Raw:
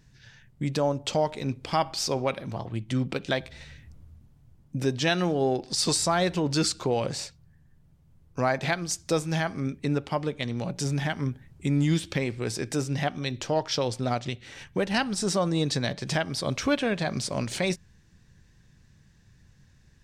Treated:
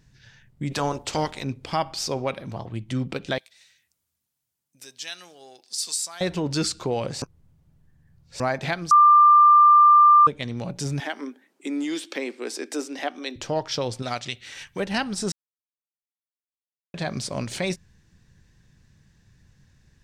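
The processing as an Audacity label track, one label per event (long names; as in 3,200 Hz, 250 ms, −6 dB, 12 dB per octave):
0.700000	1.420000	ceiling on every frequency bin ceiling under each frame's peak by 18 dB
3.380000	6.210000	first difference
7.220000	8.400000	reverse
8.910000	10.270000	beep over 1,190 Hz −10 dBFS
11.000000	13.360000	Butterworth high-pass 250 Hz 48 dB per octave
14.020000	14.800000	tilt shelving filter lows −7 dB
15.320000	16.940000	silence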